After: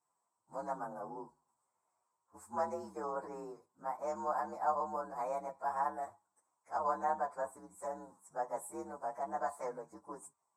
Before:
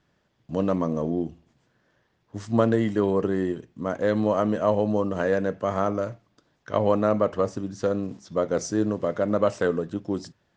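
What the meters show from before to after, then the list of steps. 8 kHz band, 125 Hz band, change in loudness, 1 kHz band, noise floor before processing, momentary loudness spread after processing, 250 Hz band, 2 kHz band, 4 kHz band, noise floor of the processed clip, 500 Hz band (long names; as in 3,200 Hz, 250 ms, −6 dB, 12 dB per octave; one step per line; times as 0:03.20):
can't be measured, −29.0 dB, −14.0 dB, −4.0 dB, −70 dBFS, 14 LU, −25.0 dB, −14.0 dB, below −20 dB, −85 dBFS, −17.0 dB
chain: partials spread apart or drawn together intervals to 119%
pair of resonant band-passes 2,800 Hz, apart 3 octaves
level +5 dB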